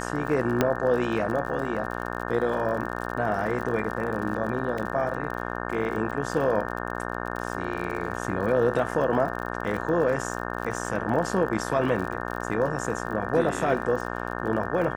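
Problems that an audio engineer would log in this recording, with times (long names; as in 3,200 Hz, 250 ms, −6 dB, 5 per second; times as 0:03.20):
mains buzz 60 Hz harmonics 30 −32 dBFS
surface crackle 46 per second −33 dBFS
0:00.61: click −7 dBFS
0:04.78: drop-out 3.6 ms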